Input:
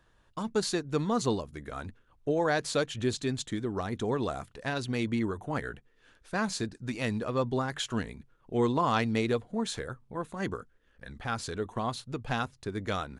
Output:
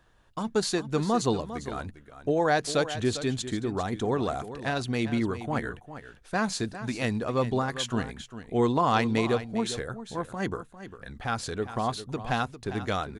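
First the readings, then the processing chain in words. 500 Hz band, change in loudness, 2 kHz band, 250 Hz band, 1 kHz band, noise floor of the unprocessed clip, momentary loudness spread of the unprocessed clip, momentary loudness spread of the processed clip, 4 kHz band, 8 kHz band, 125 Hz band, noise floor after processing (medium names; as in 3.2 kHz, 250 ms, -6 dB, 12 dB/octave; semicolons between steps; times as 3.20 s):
+3.0 dB, +3.0 dB, +3.0 dB, +3.0 dB, +4.0 dB, -66 dBFS, 13 LU, 13 LU, +2.5 dB, +2.5 dB, +2.5 dB, -54 dBFS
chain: peaking EQ 740 Hz +4.5 dB 0.2 oct; on a send: delay 401 ms -12.5 dB; on the sum: trim +2.5 dB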